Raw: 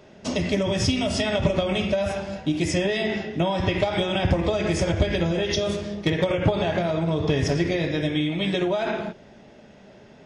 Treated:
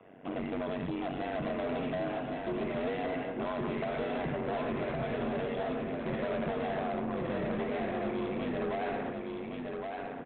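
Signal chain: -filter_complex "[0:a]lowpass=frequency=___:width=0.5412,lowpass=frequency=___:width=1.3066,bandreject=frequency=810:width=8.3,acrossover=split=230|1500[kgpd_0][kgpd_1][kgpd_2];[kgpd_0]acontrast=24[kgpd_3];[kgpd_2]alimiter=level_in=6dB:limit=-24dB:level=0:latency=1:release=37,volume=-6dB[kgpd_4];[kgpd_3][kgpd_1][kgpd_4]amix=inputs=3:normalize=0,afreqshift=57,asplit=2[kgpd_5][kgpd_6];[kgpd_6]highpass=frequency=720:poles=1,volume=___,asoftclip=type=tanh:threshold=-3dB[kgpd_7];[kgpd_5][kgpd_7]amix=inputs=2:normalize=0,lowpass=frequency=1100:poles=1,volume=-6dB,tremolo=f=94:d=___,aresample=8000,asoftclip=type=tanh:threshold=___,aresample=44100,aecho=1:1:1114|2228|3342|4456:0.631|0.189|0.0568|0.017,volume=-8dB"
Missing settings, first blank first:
2900, 2900, 17dB, 0.919, -22dB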